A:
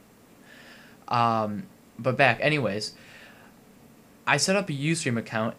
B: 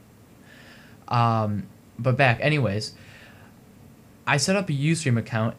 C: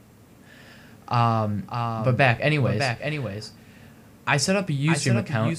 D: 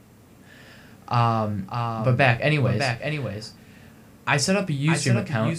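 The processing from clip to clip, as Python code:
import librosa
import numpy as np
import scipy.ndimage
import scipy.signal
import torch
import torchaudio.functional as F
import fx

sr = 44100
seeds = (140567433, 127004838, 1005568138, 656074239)

y1 = fx.peak_eq(x, sr, hz=92.0, db=13.5, octaves=1.2)
y2 = y1 + 10.0 ** (-6.5 / 20.0) * np.pad(y1, (int(604 * sr / 1000.0), 0))[:len(y1)]
y3 = fx.doubler(y2, sr, ms=32.0, db=-11.0)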